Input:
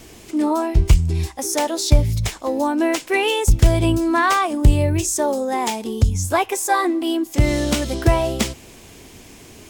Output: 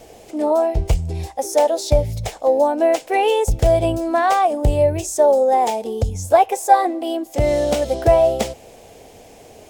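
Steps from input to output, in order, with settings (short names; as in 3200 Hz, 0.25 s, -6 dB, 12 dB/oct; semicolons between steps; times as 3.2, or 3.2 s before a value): band shelf 610 Hz +13.5 dB 1.1 oct; gain -5 dB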